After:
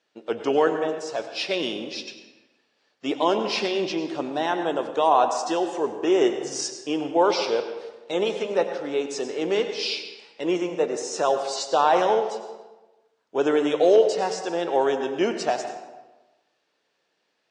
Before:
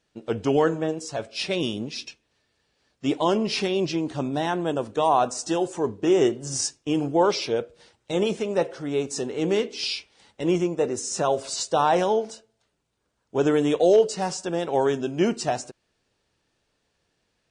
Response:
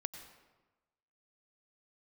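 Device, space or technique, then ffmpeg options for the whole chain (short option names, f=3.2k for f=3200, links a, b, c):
supermarket ceiling speaker: -filter_complex "[0:a]highpass=350,lowpass=5.5k[a];[1:a]atrim=start_sample=2205[b];[a][b]afir=irnorm=-1:irlink=0,volume=3.5dB"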